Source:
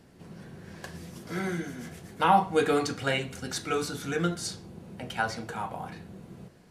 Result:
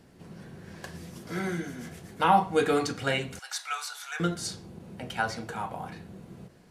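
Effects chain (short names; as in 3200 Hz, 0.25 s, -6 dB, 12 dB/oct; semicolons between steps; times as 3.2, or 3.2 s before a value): 3.39–4.2 steep high-pass 760 Hz 36 dB/oct; ending taper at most 330 dB/s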